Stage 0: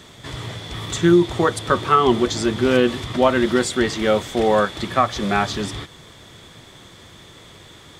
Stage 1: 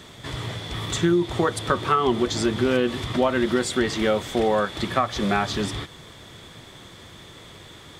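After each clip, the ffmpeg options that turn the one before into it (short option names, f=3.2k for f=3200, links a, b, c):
-af "equalizer=f=6.6k:w=1.5:g=-2,acompressor=threshold=-18dB:ratio=3"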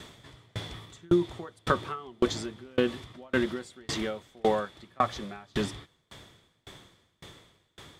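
-af "aeval=exprs='val(0)*pow(10,-34*if(lt(mod(1.8*n/s,1),2*abs(1.8)/1000),1-mod(1.8*n/s,1)/(2*abs(1.8)/1000),(mod(1.8*n/s,1)-2*abs(1.8)/1000)/(1-2*abs(1.8)/1000))/20)':c=same"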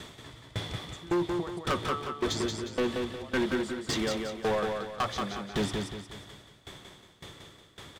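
-af "asoftclip=type=hard:threshold=-26dB,aecho=1:1:179|358|537|716|895:0.596|0.232|0.0906|0.0353|0.0138,volume=2dB"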